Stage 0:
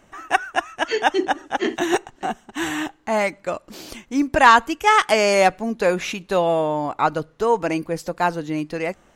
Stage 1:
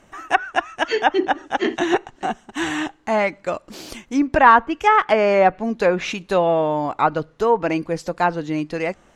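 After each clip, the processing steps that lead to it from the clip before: low-pass that closes with the level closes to 1.7 kHz, closed at -12.5 dBFS; trim +1.5 dB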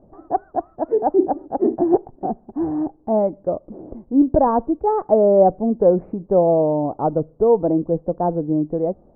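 inverse Chebyshev low-pass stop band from 3 kHz, stop band 70 dB; trim +4 dB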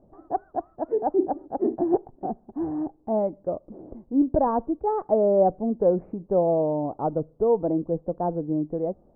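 de-esser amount 80%; trim -6 dB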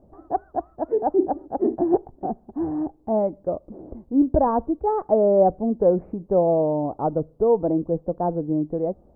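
peaking EQ 64 Hz +8.5 dB 0.51 oct; trim +2.5 dB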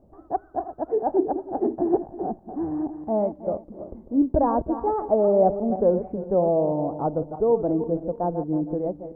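backward echo that repeats 160 ms, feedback 49%, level -10 dB; trim -2 dB

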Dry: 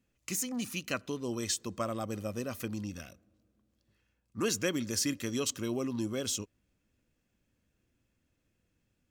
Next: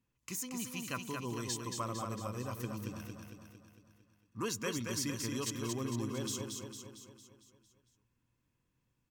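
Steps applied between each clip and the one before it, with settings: graphic EQ with 31 bands 125 Hz +9 dB, 630 Hz -6 dB, 1 kHz +12 dB, 16 kHz +4 dB; on a send: feedback delay 227 ms, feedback 55%, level -4.5 dB; on the sum: trim -6.5 dB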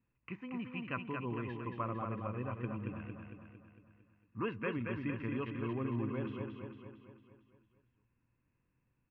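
Chebyshev low-pass 2.7 kHz, order 5; trim +1 dB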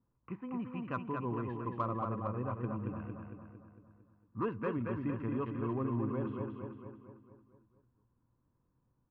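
level-controlled noise filter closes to 1.4 kHz, open at -36 dBFS; resonant high shelf 1.6 kHz -9.5 dB, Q 1.5; in parallel at -9 dB: saturation -34 dBFS, distortion -13 dB

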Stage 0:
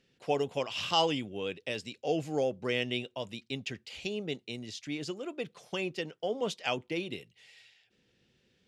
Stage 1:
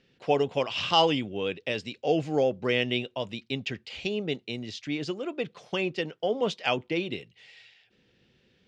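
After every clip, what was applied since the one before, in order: low-pass 4.7 kHz 12 dB/octave; trim +5.5 dB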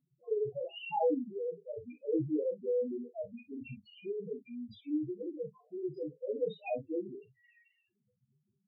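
loudest bins only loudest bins 1; gated-style reverb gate 80 ms falling, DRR 1.5 dB; trim -2 dB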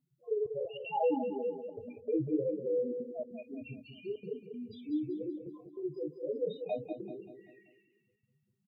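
trance gate "xxxxxx.xxx.xxxxx" 195 bpm -24 dB; feedback delay 193 ms, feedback 43%, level -8 dB

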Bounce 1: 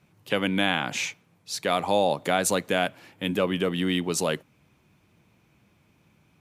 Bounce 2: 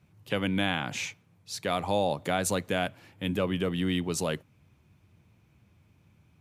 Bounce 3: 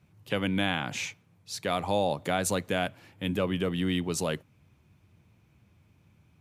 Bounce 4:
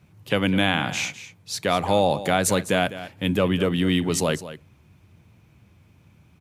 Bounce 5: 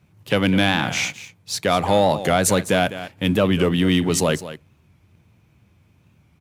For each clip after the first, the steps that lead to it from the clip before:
peaking EQ 84 Hz +12.5 dB 1.4 oct; trim -5 dB
no audible change
delay 205 ms -14 dB; trim +7 dB
waveshaping leveller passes 1; warped record 45 rpm, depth 100 cents

